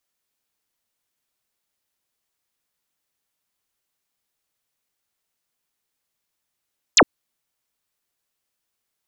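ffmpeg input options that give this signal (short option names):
-f lavfi -i "aevalsrc='0.376*clip(t/0.002,0,1)*clip((0.06-t)/0.002,0,1)*sin(2*PI*8200*0.06/log(200/8200)*(exp(log(200/8200)*t/0.06)-1))':d=0.06:s=44100"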